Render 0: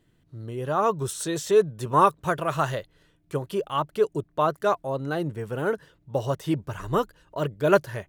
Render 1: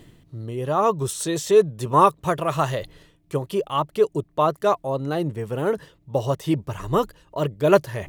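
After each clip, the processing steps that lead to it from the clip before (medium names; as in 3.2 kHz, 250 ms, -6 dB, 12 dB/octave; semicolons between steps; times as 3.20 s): peaking EQ 1.5 kHz -8 dB 0.25 oct; reverse; upward compressor, threshold -32 dBFS; reverse; trim +3.5 dB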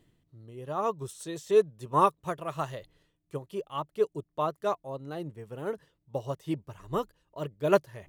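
upward expansion 1.5:1, over -32 dBFS; trim -6 dB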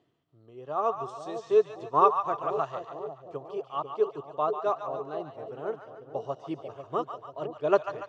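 cabinet simulation 150–5700 Hz, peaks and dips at 190 Hz -8 dB, 410 Hz +4 dB, 710 Hz +9 dB, 1.2 kHz +7 dB, 2 kHz -4 dB, 4 kHz -3 dB; two-band feedback delay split 700 Hz, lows 493 ms, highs 143 ms, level -7.5 dB; trim -3.5 dB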